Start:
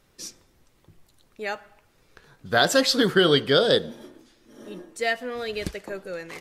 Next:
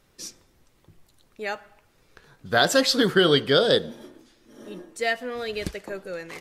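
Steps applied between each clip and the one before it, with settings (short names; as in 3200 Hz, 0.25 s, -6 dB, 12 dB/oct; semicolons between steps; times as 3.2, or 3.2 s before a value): nothing audible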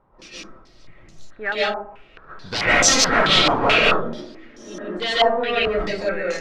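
wavefolder -22 dBFS; digital reverb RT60 0.45 s, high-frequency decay 0.35×, pre-delay 0.1 s, DRR -8 dB; stepped low-pass 4.6 Hz 970–6100 Hz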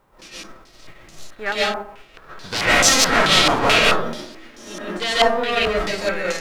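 spectral whitening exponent 0.6; gain +1 dB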